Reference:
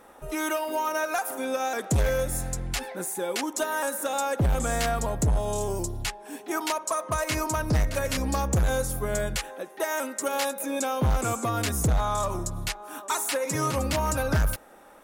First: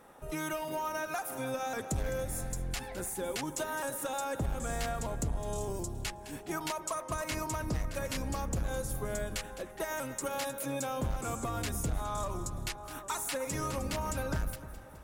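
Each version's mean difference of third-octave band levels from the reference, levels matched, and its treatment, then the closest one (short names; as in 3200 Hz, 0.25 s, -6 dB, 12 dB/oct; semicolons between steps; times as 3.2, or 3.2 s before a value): 4.0 dB: octaver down 1 oct, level -3 dB; compressor 2.5:1, threshold -28 dBFS, peak gain reduction 8 dB; split-band echo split 1900 Hz, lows 0.303 s, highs 0.21 s, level -14 dB; gain -5 dB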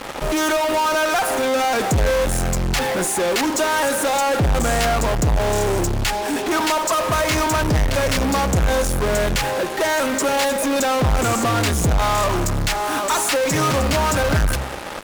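6.0 dB: Bessel low-pass 6400 Hz; de-hum 66.26 Hz, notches 5; in parallel at -8 dB: fuzz box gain 55 dB, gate -50 dBFS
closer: first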